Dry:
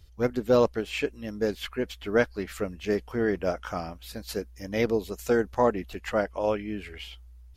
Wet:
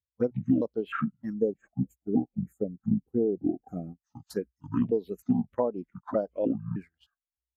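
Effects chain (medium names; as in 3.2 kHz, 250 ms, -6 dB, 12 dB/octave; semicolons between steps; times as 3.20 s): pitch shift switched off and on -11.5 st, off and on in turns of 307 ms; gate -38 dBFS, range -17 dB; high-pass 140 Hz 12 dB/octave; touch-sensitive phaser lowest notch 310 Hz, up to 1.9 kHz, full sweep at -22.5 dBFS; time-frequency box 1.33–4.05 s, 830–6400 Hz -18 dB; compression 10:1, threshold -30 dBFS, peak gain reduction 12.5 dB; spectral contrast expander 1.5:1; trim +6 dB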